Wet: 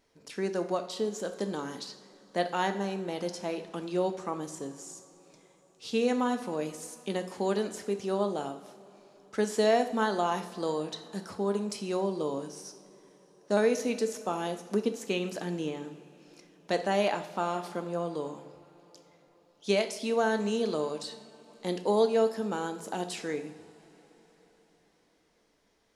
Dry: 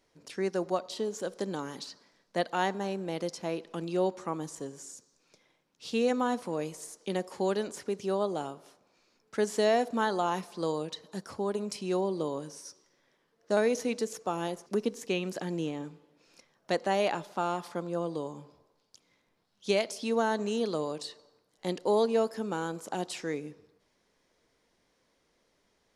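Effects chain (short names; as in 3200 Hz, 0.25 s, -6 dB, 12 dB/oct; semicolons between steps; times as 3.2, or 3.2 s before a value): vibrato 0.95 Hz 9.2 cents; two-slope reverb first 0.57 s, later 4.9 s, from -19 dB, DRR 7 dB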